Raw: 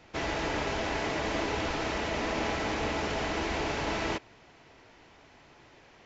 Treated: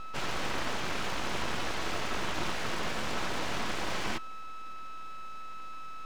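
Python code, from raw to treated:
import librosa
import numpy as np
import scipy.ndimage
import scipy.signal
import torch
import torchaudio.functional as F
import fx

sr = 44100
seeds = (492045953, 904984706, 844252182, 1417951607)

y = x + 10.0 ** (-35.0 / 20.0) * np.sin(2.0 * np.pi * 650.0 * np.arange(len(x)) / sr)
y = np.abs(y)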